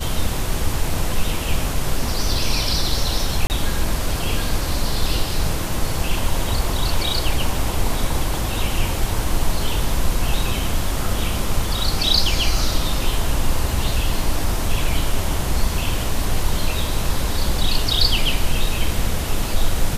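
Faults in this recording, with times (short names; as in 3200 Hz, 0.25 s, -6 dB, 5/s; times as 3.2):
3.47–3.5 gap 29 ms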